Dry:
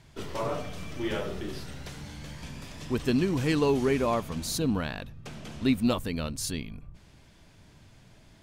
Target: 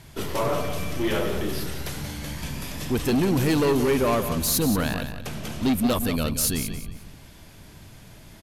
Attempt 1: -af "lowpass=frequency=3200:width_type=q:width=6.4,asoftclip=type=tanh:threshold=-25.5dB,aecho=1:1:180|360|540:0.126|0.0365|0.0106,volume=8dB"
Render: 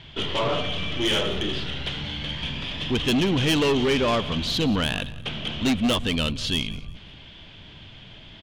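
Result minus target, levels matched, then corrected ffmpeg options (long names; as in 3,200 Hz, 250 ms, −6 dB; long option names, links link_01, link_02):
8,000 Hz band −9.5 dB; echo-to-direct −8.5 dB
-af "lowpass=frequency=12000:width_type=q:width=6.4,asoftclip=type=tanh:threshold=-25.5dB,aecho=1:1:180|360|540:0.335|0.0971|0.0282,volume=8dB"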